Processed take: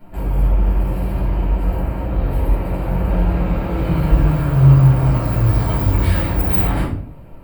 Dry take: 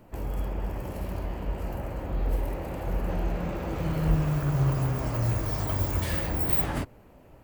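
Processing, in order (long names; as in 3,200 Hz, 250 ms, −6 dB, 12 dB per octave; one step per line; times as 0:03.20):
parametric band 6,200 Hz −13 dB 0.41 octaves
rectangular room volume 550 cubic metres, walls furnished, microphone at 7.7 metres
level −2 dB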